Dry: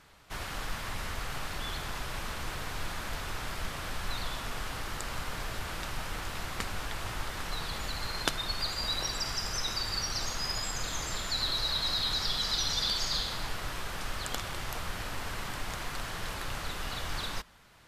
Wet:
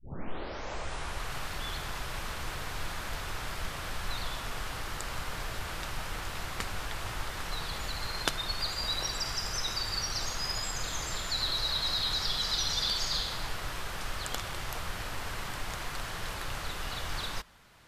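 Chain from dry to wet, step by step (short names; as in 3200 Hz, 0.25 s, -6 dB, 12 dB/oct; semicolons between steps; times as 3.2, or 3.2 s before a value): tape start at the beginning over 1.36 s; dynamic EQ 240 Hz, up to -3 dB, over -55 dBFS, Q 1.9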